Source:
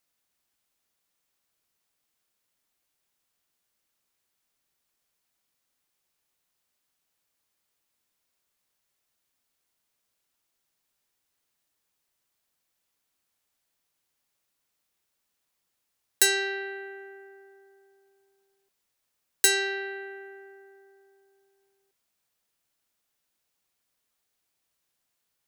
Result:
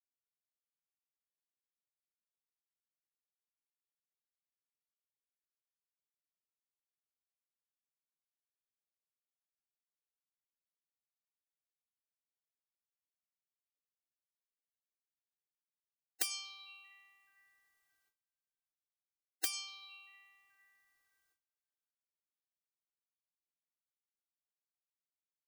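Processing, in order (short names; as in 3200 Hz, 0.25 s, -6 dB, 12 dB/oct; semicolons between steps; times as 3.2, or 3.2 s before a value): gate with hold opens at -58 dBFS; comb 2.6 ms, depth 65%; spectral gate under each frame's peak -15 dB weak; gain -5.5 dB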